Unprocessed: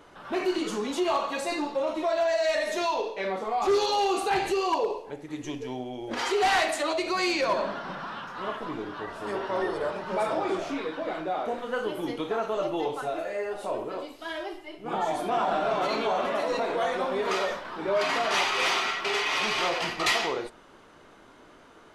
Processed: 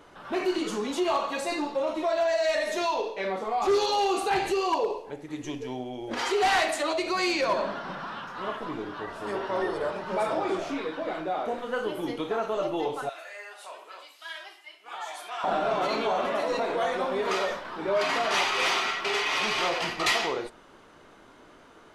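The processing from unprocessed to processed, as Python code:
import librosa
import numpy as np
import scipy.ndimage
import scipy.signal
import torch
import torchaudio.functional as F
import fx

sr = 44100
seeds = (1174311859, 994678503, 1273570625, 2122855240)

y = fx.highpass(x, sr, hz=1400.0, slope=12, at=(13.09, 15.44))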